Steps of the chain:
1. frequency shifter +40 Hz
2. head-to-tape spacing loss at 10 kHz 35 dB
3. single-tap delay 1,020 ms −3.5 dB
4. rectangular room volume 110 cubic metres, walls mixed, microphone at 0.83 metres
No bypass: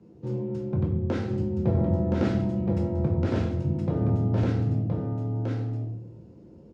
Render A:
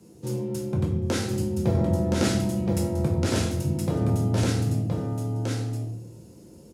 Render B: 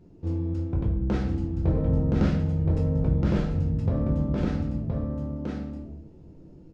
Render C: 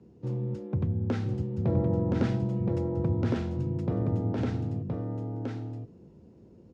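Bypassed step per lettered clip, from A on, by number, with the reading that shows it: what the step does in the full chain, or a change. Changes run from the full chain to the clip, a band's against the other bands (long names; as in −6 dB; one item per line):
2, 2 kHz band +5.0 dB
1, 500 Hz band −2.0 dB
4, echo-to-direct ratio 3.5 dB to −3.5 dB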